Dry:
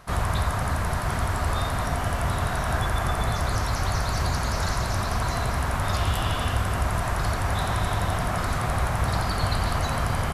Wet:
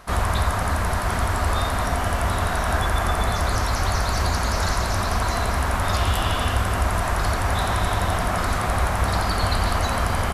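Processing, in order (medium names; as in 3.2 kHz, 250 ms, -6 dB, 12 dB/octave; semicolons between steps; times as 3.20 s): peaking EQ 130 Hz -13.5 dB 0.35 oct; trim +4 dB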